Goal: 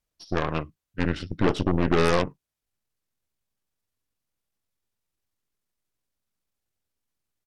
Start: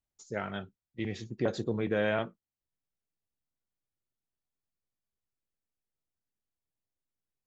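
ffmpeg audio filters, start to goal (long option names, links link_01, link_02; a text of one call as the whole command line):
ffmpeg -i in.wav -af "aeval=exprs='0.158*(cos(1*acos(clip(val(0)/0.158,-1,1)))-cos(1*PI/2))+0.00112*(cos(5*acos(clip(val(0)/0.158,-1,1)))-cos(5*PI/2))+0.0158*(cos(6*acos(clip(val(0)/0.158,-1,1)))-cos(6*PI/2))+0.0398*(cos(8*acos(clip(val(0)/0.158,-1,1)))-cos(8*PI/2))':channel_layout=same,asetrate=35002,aresample=44100,atempo=1.25992,volume=7dB" out.wav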